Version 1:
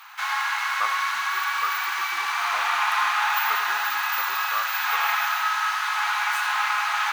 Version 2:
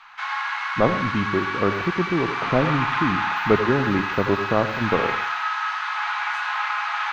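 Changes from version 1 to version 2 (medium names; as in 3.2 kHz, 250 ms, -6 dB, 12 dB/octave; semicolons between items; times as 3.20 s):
speech: remove ladder band-pass 1.3 kHz, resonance 75%; master: add distance through air 170 m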